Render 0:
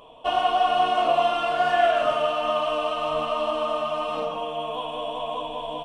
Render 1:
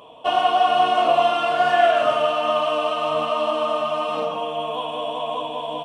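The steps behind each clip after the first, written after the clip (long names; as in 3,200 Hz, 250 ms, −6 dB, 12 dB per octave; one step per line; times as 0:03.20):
high-pass filter 99 Hz 12 dB per octave
level +3.5 dB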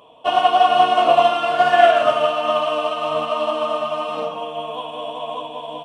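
expander for the loud parts 1.5 to 1, over −30 dBFS
level +5 dB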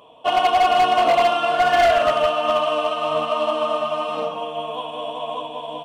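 gain into a clipping stage and back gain 12 dB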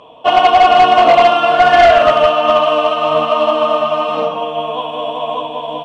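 high-frequency loss of the air 91 metres
level +8.5 dB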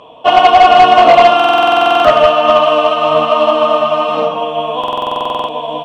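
buffer that repeats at 0:01.35/0:04.79, samples 2,048, times 14
level +2.5 dB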